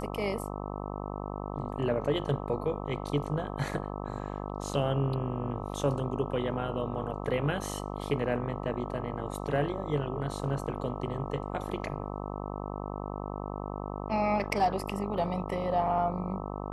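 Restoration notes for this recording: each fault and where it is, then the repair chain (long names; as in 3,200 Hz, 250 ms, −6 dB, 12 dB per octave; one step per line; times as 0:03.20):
mains buzz 50 Hz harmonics 26 −37 dBFS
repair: hum removal 50 Hz, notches 26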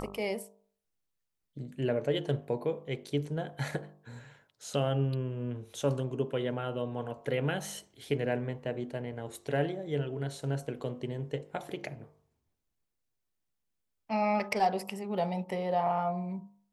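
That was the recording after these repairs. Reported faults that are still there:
none of them is left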